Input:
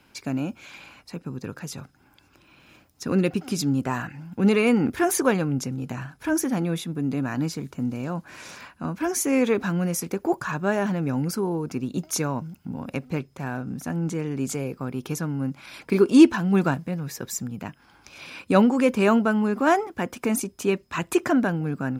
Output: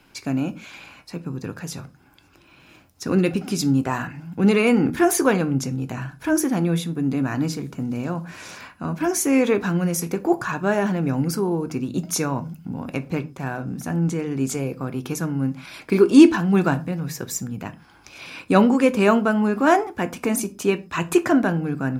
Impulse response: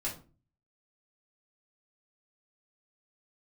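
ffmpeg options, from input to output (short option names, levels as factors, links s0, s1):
-filter_complex "[0:a]asplit=2[s0][s1];[1:a]atrim=start_sample=2205,atrim=end_sample=6174[s2];[s1][s2]afir=irnorm=-1:irlink=0,volume=0.299[s3];[s0][s3]amix=inputs=2:normalize=0,volume=1.12"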